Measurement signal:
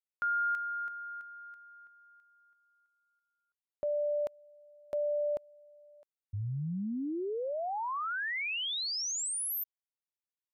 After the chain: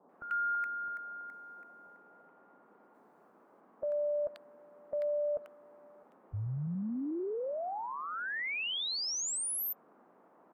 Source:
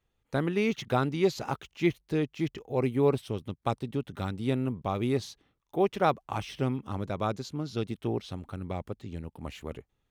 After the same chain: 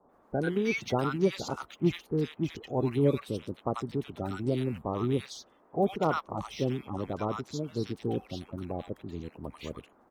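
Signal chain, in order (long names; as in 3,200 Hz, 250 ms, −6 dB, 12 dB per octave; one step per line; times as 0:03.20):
spectral magnitudes quantised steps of 30 dB
noise in a band 190–1,200 Hz −62 dBFS
multiband delay without the direct sound lows, highs 90 ms, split 1,100 Hz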